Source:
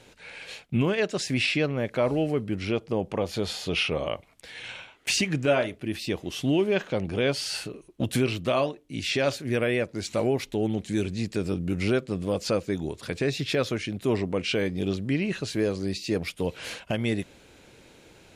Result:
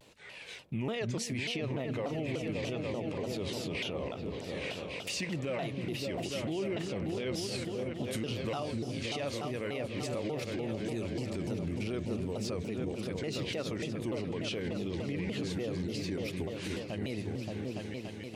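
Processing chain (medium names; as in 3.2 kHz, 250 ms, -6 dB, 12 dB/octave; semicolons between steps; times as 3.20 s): high-pass 55 Hz; band-stop 1.5 kHz, Q 7.9; delay with an opening low-pass 287 ms, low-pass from 200 Hz, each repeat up 2 oct, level -3 dB; peak limiter -21 dBFS, peak gain reduction 10 dB; vibrato with a chosen wave saw down 3.4 Hz, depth 250 cents; trim -5.5 dB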